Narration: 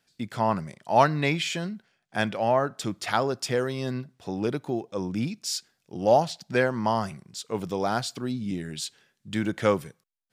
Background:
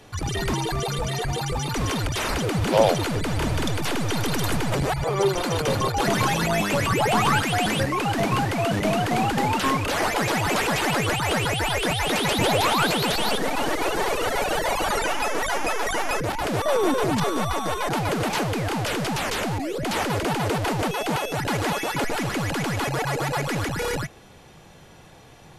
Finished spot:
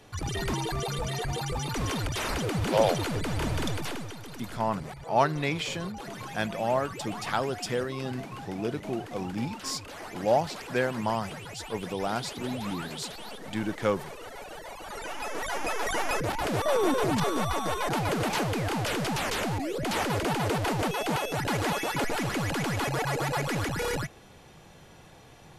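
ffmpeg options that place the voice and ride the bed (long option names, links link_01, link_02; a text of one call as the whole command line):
ffmpeg -i stem1.wav -i stem2.wav -filter_complex "[0:a]adelay=4200,volume=-4dB[link_01];[1:a]volume=9.5dB,afade=type=out:start_time=3.69:duration=0.47:silence=0.223872,afade=type=in:start_time=14.83:duration=1.17:silence=0.188365[link_02];[link_01][link_02]amix=inputs=2:normalize=0" out.wav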